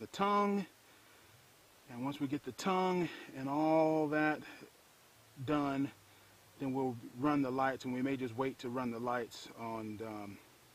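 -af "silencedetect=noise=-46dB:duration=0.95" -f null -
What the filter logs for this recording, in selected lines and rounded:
silence_start: 0.65
silence_end: 1.90 | silence_duration: 1.25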